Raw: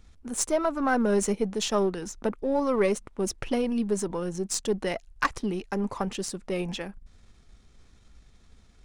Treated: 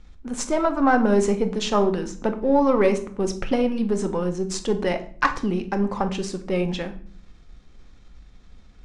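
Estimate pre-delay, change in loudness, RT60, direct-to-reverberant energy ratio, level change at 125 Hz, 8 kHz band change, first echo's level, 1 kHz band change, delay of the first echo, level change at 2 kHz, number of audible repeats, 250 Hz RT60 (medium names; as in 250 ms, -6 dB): 3 ms, +5.0 dB, 0.50 s, 7.0 dB, +6.5 dB, -2.5 dB, no echo, +7.0 dB, no echo, +5.0 dB, no echo, 0.70 s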